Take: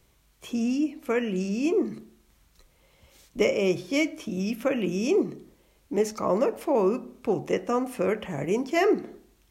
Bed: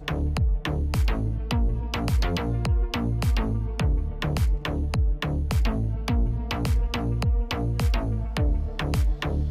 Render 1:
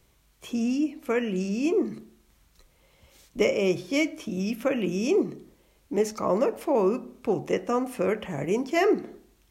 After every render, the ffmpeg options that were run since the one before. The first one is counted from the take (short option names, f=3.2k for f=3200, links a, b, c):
-af anull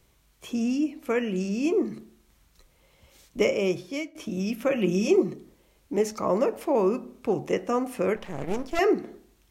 -filter_complex "[0:a]asettb=1/sr,asplit=3[a][b][c];[a]atrim=end=4.684[d];[b]atrim=start=4.68:end=5.34,asetpts=PTS-STARTPTS,afade=t=in:d=0.004:c=qsin,afade=t=out:st=0.656:d=0.004:c=qsin,aecho=1:1:5.5:0.65,atrim=end_sample=29106[e];[c]atrim=start=5.336[f];[d][e]acrossfade=d=0.004:c1=hsin:c2=qsin[g];[g][f]acrossfade=d=0.004:c1=qsin:c2=hsin,asettb=1/sr,asplit=3[h][i][j];[h]atrim=end=8.164[k];[i]atrim=start=8.16:end=8.79,asetpts=PTS-STARTPTS,afade=t=in:d=0.004:c=qsin,afade=t=out:st=0.626:d=0.004:c=qsin,aeval=exprs='max(val(0),0)':c=same[l];[j]atrim=start=8.786[m];[k][l]acrossfade=d=0.004:c1=hsin:c2=qsin[n];[n][m]acrossfade=d=0.004:c1=qsin:c2=hsin,asplit=2[o][p];[o]atrim=end=4.15,asetpts=PTS-STARTPTS,afade=t=out:st=3.4:d=0.75:c=qsin:silence=0.125893[q];[p]atrim=start=4.15,asetpts=PTS-STARTPTS,afade=t=in:d=0.004:c=hsin:silence=0.125893[r];[q][r]concat=n=2:v=0:a=1"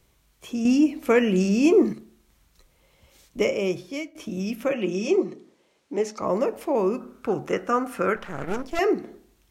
-filter_complex "[0:a]asettb=1/sr,asplit=3[a][b][c];[a]atrim=end=0.654[d];[b]atrim=start=0.65:end=1.93,asetpts=PTS-STARTPTS,afade=t=in:d=0.004:c=qsin,afade=t=out:st=1.276:d=0.004:c=qsin,acontrast=86[e];[c]atrim=start=1.926[f];[d][e]acrossfade=d=0.004:c1=hsin:c2=qsin[g];[g][f]acrossfade=d=0.004:c1=qsin:c2=hsin,asettb=1/sr,asplit=3[h][i][j];[h]atrim=end=4.734[k];[i]atrim=start=4.73:end=6.22,asetpts=PTS-STARTPTS,afade=t=in:d=0.004:c=qsin,afade=t=out:st=1.486:d=0.004:c=qsin,highpass=230,lowpass=7.3k[l];[j]atrim=start=6.216[m];[k][l]acrossfade=d=0.004:c1=hsin:c2=qsin[n];[n][m]acrossfade=d=0.004:c1=qsin:c2=hsin,asettb=1/sr,asplit=3[o][p][q];[o]atrim=end=7.004[r];[p]atrim=start=7:end=8.62,asetpts=PTS-STARTPTS,afade=t=in:d=0.004:c=qsin,afade=t=out:st=1.616:d=0.004:c=qsin,equalizer=f=1.4k:t=o:w=0.45:g=15[s];[q]atrim=start=8.616[t];[r][s]acrossfade=d=0.004:c1=hsin:c2=qsin[u];[u][t]acrossfade=d=0.004:c1=qsin:c2=hsin"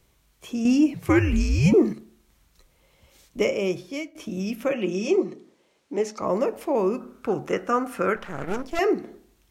-filter_complex "[0:a]asettb=1/sr,asplit=3[a][b][c];[a]atrim=end=0.944[d];[b]atrim=start=0.94:end=1.74,asetpts=PTS-STARTPTS,afade=t=in:d=0.004:c=qsin,afade=t=out:st=0.796:d=0.004:c=qsin,afreqshift=-140[e];[c]atrim=start=1.736[f];[d][e]acrossfade=d=0.004:c1=hsin:c2=qsin[g];[g][f]acrossfade=d=0.004:c1=qsin:c2=hsin"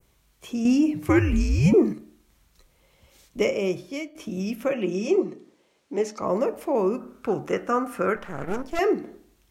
-af "adynamicequalizer=threshold=0.00447:dfrequency=3800:dqfactor=0.76:tfrequency=3800:tqfactor=0.76:attack=5:release=100:ratio=0.375:range=2.5:mode=cutabove:tftype=bell,bandreject=f=302:t=h:w=4,bandreject=f=604:t=h:w=4,bandreject=f=906:t=h:w=4,bandreject=f=1.208k:t=h:w=4,bandreject=f=1.51k:t=h:w=4,bandreject=f=1.812k:t=h:w=4,bandreject=f=2.114k:t=h:w=4,bandreject=f=2.416k:t=h:w=4,bandreject=f=2.718k:t=h:w=4,bandreject=f=3.02k:t=h:w=4,bandreject=f=3.322k:t=h:w=4,bandreject=f=3.624k:t=h:w=4,bandreject=f=3.926k:t=h:w=4,bandreject=f=4.228k:t=h:w=4,bandreject=f=4.53k:t=h:w=4"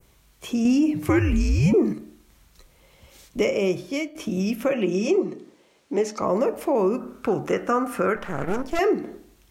-filter_complex "[0:a]asplit=2[a][b];[b]alimiter=limit=-17dB:level=0:latency=1,volume=-0.5dB[c];[a][c]amix=inputs=2:normalize=0,acompressor=threshold=-23dB:ratio=1.5"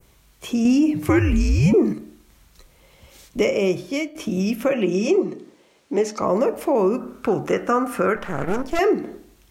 -af "volume=2.5dB"